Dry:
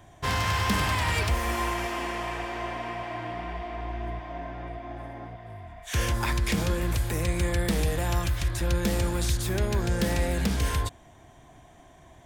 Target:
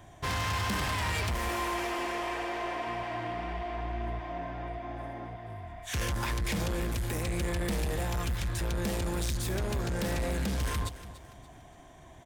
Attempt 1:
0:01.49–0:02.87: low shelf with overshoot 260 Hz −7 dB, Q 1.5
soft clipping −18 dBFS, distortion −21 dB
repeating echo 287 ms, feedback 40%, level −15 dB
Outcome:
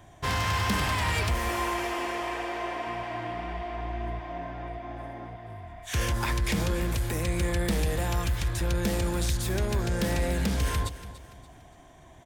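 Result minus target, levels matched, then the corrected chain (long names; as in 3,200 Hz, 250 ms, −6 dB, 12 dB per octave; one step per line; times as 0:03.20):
soft clipping: distortion −11 dB
0:01.49–0:02.87: low shelf with overshoot 260 Hz −7 dB, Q 1.5
soft clipping −27.5 dBFS, distortion −10 dB
repeating echo 287 ms, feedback 40%, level −15 dB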